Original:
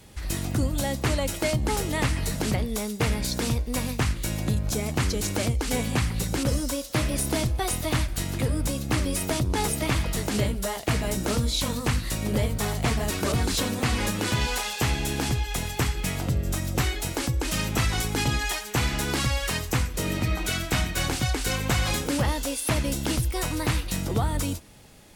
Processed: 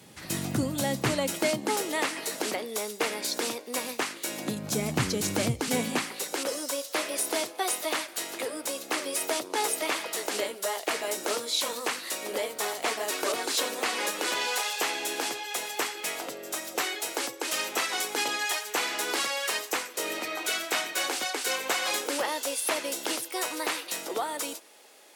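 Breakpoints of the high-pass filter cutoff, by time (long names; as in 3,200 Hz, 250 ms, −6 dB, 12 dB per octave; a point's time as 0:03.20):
high-pass filter 24 dB per octave
0:01.13 130 Hz
0:01.95 320 Hz
0:04.27 320 Hz
0:04.83 120 Hz
0:05.65 120 Hz
0:06.19 380 Hz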